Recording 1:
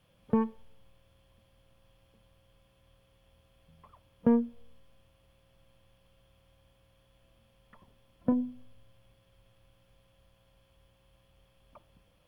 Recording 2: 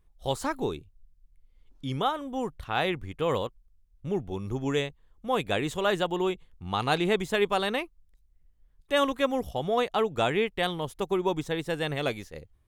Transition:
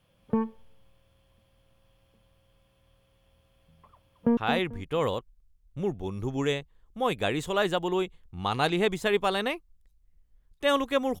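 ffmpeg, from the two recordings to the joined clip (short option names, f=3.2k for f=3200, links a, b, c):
-filter_complex "[0:a]apad=whole_dur=11.2,atrim=end=11.2,atrim=end=4.372[a];[1:a]atrim=start=2.648:end=9.48[b];[a][b]acrossfade=d=0.004:c1=hsin:c2=hsin,asplit=2[c][d];[d]afade=t=in:st=3.93:d=0.01,afade=t=out:st=4.37:d=0.01,aecho=0:1:220|440|660:0.375837|0.0939594|0.0234898[e];[c][e]amix=inputs=2:normalize=0"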